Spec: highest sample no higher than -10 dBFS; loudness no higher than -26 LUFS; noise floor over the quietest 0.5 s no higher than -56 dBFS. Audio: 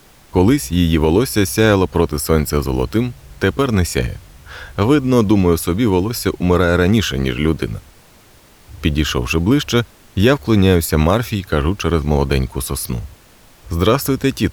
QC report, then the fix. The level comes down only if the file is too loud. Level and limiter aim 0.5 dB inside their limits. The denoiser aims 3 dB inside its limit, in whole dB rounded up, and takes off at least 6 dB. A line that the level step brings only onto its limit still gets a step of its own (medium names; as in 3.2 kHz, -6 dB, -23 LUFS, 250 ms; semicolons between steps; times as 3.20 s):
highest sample -2.5 dBFS: fail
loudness -16.5 LUFS: fail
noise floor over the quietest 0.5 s -47 dBFS: fail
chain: trim -10 dB